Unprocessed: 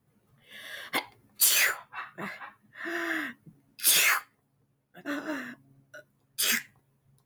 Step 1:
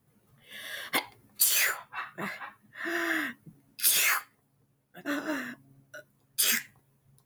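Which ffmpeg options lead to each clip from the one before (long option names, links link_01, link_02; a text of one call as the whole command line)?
ffmpeg -i in.wav -af "highshelf=frequency=5900:gain=5,acompressor=threshold=-23dB:ratio=6,volume=1.5dB" out.wav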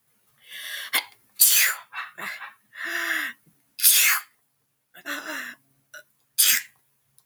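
ffmpeg -i in.wav -af "tiltshelf=frequency=790:gain=-9.5,volume=-1.5dB" out.wav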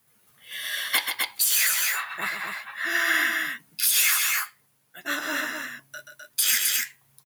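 ffmpeg -i in.wav -filter_complex "[0:a]asplit=2[link_01][link_02];[link_02]asoftclip=type=tanh:threshold=-15.5dB,volume=-7dB[link_03];[link_01][link_03]amix=inputs=2:normalize=0,aecho=1:1:131.2|256.6:0.447|0.562,alimiter=limit=-10.5dB:level=0:latency=1:release=453" out.wav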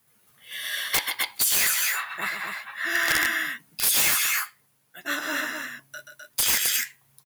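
ffmpeg -i in.wav -af "aeval=exprs='(mod(5.01*val(0)+1,2)-1)/5.01':channel_layout=same" out.wav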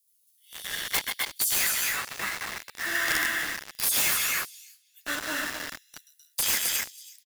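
ffmpeg -i in.wav -filter_complex "[0:a]asplit=2[link_01][link_02];[link_02]adelay=326,lowpass=frequency=3000:poles=1,volume=-9.5dB,asplit=2[link_03][link_04];[link_04]adelay=326,lowpass=frequency=3000:poles=1,volume=0.25,asplit=2[link_05][link_06];[link_06]adelay=326,lowpass=frequency=3000:poles=1,volume=0.25[link_07];[link_01][link_03][link_05][link_07]amix=inputs=4:normalize=0,acrossover=split=3700[link_08][link_09];[link_08]acrusher=bits=4:mix=0:aa=0.000001[link_10];[link_10][link_09]amix=inputs=2:normalize=0,volume=-3.5dB" out.wav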